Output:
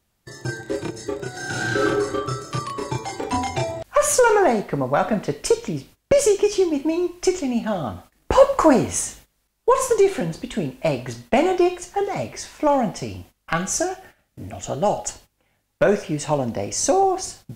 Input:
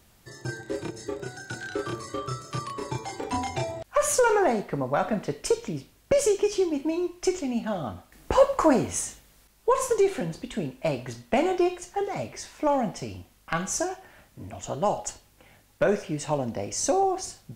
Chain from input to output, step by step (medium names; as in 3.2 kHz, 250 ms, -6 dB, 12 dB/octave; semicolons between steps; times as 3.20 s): 13.55–15.09 s: band-stop 1 kHz, Q 5.3; gate -49 dBFS, range -17 dB; 1.30–1.81 s: reverb throw, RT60 1.5 s, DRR -7 dB; trim +5.5 dB